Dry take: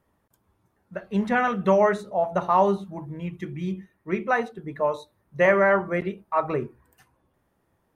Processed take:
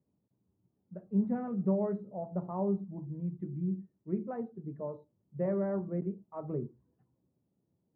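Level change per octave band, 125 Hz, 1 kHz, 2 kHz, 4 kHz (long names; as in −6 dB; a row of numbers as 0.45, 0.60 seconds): −3.5 dB, −21.0 dB, −31.5 dB, below −35 dB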